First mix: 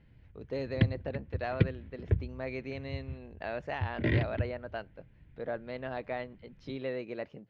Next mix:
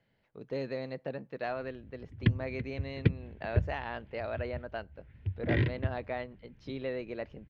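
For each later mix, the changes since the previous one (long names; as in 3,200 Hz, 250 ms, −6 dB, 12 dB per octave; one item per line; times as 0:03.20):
background: entry +1.45 s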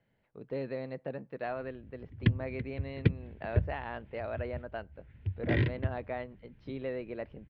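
speech: add high-frequency loss of the air 250 metres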